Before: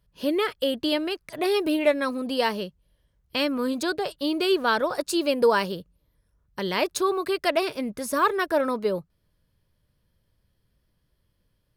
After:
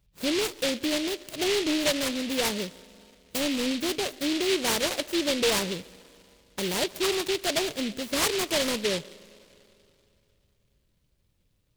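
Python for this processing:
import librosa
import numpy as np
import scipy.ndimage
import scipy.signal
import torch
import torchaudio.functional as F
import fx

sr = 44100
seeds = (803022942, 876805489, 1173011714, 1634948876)

y = fx.env_lowpass_down(x, sr, base_hz=1500.0, full_db=-22.0)
y = 10.0 ** (-19.5 / 20.0) * np.tanh(y / 10.0 ** (-19.5 / 20.0))
y = y + 10.0 ** (-24.0 / 20.0) * np.pad(y, (int(141 * sr / 1000.0), 0))[:len(y)]
y = fx.rev_spring(y, sr, rt60_s=3.0, pass_ms=(38, 48), chirp_ms=75, drr_db=19.5)
y = fx.noise_mod_delay(y, sr, seeds[0], noise_hz=3100.0, depth_ms=0.22)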